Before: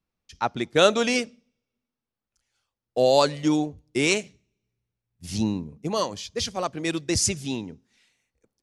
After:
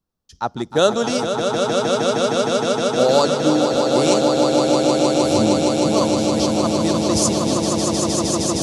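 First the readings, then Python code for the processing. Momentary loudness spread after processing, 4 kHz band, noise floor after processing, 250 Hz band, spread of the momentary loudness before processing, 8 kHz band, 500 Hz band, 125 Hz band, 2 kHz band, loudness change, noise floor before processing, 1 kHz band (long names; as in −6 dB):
4 LU, +7.0 dB, −47 dBFS, +10.0 dB, 13 LU, +7.5 dB, +9.5 dB, +8.5 dB, +1.5 dB, +7.0 dB, below −85 dBFS, +9.0 dB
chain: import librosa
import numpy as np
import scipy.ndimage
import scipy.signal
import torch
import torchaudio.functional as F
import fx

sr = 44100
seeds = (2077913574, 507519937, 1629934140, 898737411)

p1 = fx.peak_eq(x, sr, hz=2300.0, db=-14.0, octaves=0.63)
p2 = p1 + fx.echo_swell(p1, sr, ms=155, loudest=8, wet_db=-5.5, dry=0)
y = F.gain(torch.from_numpy(p2), 3.0).numpy()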